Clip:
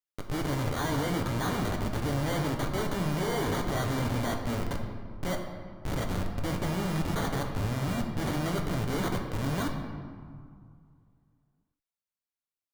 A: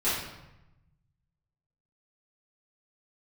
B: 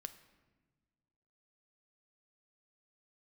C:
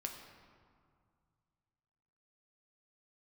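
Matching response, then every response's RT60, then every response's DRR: C; 0.95 s, non-exponential decay, 2.1 s; −13.5, 10.0, 2.0 decibels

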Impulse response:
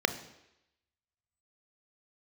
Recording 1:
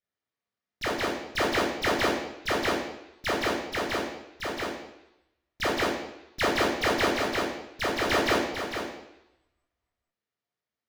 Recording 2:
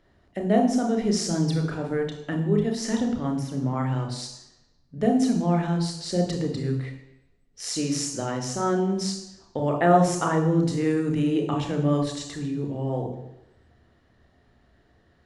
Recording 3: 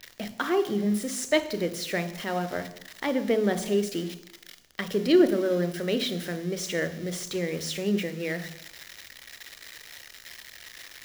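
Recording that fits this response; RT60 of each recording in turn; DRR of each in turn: 3; 0.85, 0.85, 0.85 seconds; −2.5, 3.0, 10.0 decibels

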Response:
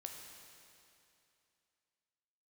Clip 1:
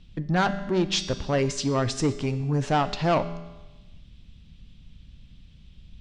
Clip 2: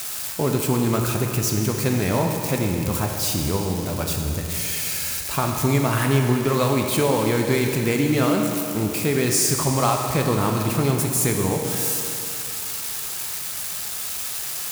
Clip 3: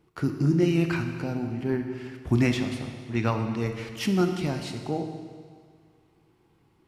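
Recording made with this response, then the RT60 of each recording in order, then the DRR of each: 2; 1.1, 2.7, 1.9 seconds; 9.5, 1.5, 5.5 decibels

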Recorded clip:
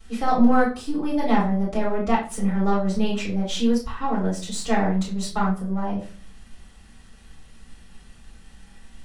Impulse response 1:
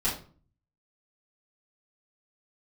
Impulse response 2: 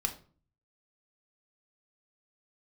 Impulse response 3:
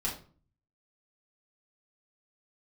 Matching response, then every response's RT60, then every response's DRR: 1; 0.40, 0.40, 0.40 seconds; −10.0, 4.5, −5.0 decibels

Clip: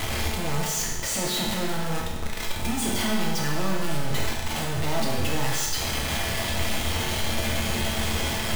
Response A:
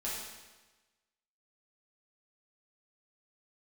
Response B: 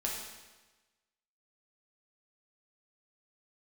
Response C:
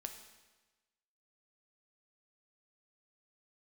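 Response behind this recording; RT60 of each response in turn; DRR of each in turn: B; 1.2, 1.2, 1.2 seconds; −8.0, −3.0, 5.5 decibels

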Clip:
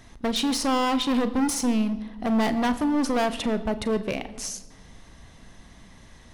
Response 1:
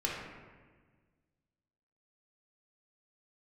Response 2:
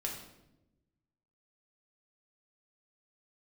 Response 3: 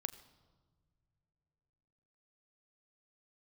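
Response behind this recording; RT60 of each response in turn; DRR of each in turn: 3; 1.5 s, 0.95 s, non-exponential decay; −4.5, −1.5, 11.5 decibels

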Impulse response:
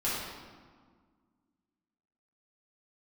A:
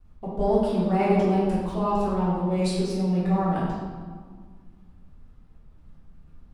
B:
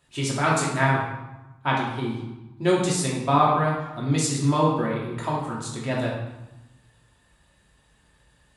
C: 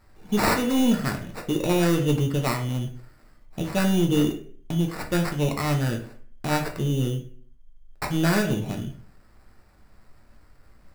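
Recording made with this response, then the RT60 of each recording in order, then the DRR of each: A; 1.7, 1.0, 0.50 seconds; −10.0, −5.0, 2.0 decibels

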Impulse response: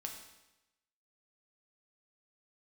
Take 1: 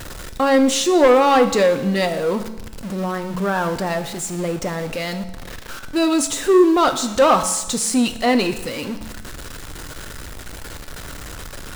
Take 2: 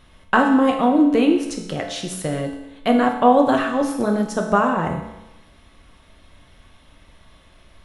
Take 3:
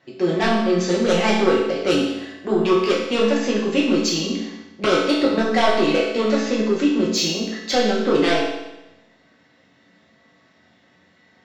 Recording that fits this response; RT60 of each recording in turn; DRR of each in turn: 2; 0.95, 0.95, 0.95 seconds; 8.0, 1.5, −5.5 decibels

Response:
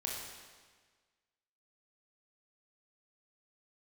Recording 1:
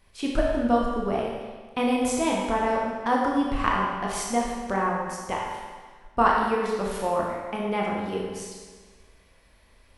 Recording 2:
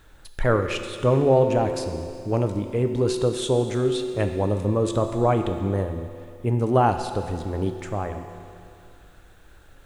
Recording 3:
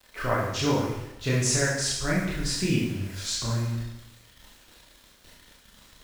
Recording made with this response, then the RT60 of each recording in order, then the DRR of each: 1; 1.5, 2.5, 0.90 seconds; −3.0, 6.0, −6.5 decibels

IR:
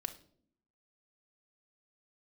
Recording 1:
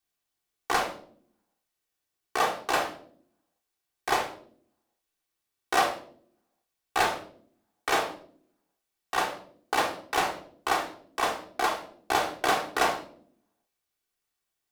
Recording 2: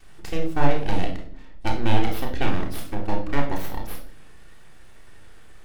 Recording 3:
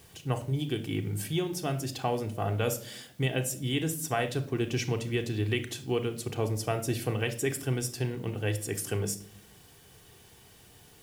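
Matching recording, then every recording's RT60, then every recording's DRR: 3; non-exponential decay, non-exponential decay, non-exponential decay; −2.5, −12.0, 4.5 decibels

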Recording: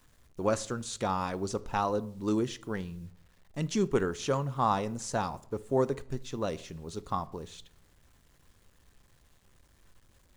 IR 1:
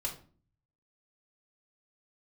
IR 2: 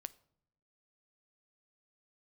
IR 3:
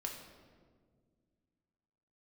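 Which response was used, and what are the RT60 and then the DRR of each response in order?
2; 0.40, 0.80, 1.8 seconds; −2.0, 15.5, 0.5 decibels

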